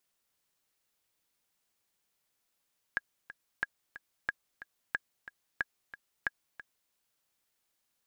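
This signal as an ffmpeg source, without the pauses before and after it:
-f lavfi -i "aevalsrc='pow(10,(-16.5-15*gte(mod(t,2*60/182),60/182))/20)*sin(2*PI*1650*mod(t,60/182))*exp(-6.91*mod(t,60/182)/0.03)':d=3.95:s=44100"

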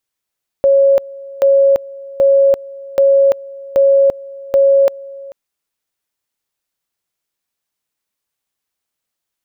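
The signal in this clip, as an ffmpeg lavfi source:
-f lavfi -i "aevalsrc='pow(10,(-6.5-21.5*gte(mod(t,0.78),0.34))/20)*sin(2*PI*551*t)':d=4.68:s=44100"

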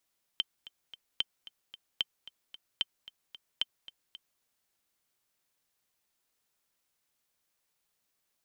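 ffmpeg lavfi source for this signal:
-f lavfi -i "aevalsrc='pow(10,(-15-18*gte(mod(t,3*60/224),60/224))/20)*sin(2*PI*3110*mod(t,60/224))*exp(-6.91*mod(t,60/224)/0.03)':d=4.01:s=44100"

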